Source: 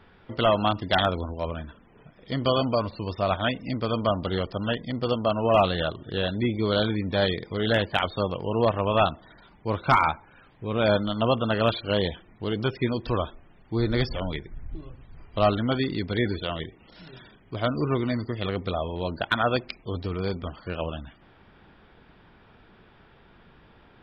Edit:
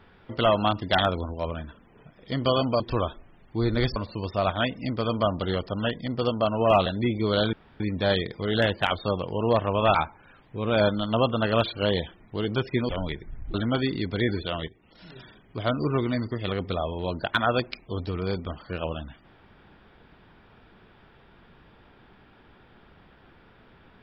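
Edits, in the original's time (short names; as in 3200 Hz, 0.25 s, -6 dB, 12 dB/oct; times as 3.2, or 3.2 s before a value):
5.7–6.25 cut
6.92 insert room tone 0.27 s
9.07–10.03 cut
12.97–14.13 move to 2.8
14.78–15.51 cut
16.65–17.09 fade in, from -13 dB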